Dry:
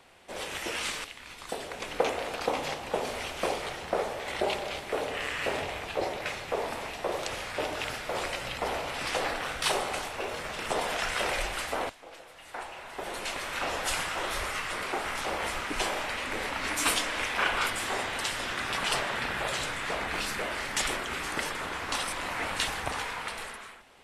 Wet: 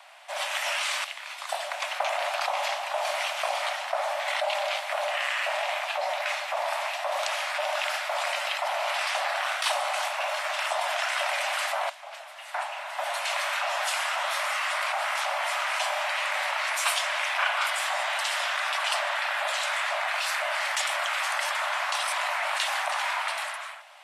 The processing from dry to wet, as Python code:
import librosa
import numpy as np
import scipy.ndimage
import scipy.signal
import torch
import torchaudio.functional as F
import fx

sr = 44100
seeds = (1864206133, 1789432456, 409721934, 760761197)

p1 = scipy.signal.sosfilt(scipy.signal.cheby1(8, 1.0, 580.0, 'highpass', fs=sr, output='sos'), x)
p2 = fx.high_shelf(p1, sr, hz=3700.0, db=-4.0)
p3 = fx.over_compress(p2, sr, threshold_db=-37.0, ratio=-0.5)
p4 = p2 + (p3 * 10.0 ** (-2.0 / 20.0))
y = p4 * 10.0 ** (2.5 / 20.0)